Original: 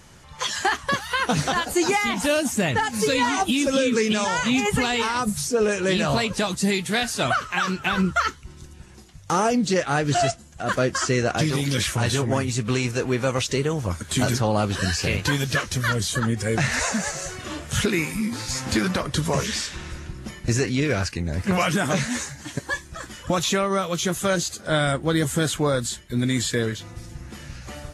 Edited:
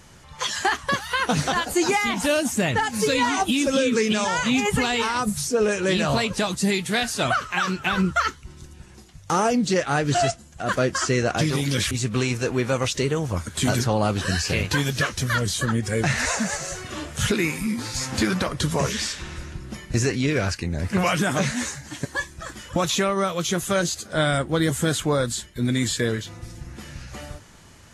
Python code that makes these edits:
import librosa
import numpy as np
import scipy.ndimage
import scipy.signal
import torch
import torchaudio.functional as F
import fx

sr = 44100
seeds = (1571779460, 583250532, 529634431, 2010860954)

y = fx.edit(x, sr, fx.cut(start_s=11.91, length_s=0.54), tone=tone)